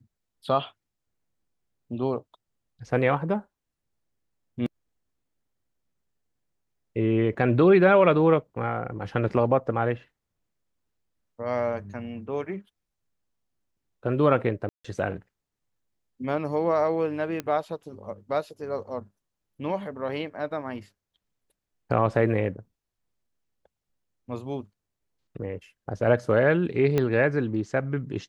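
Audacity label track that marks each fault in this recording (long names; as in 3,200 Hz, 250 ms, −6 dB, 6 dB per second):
14.690000	14.850000	drop-out 155 ms
17.400000	17.400000	click −16 dBFS
26.980000	26.980000	click −12 dBFS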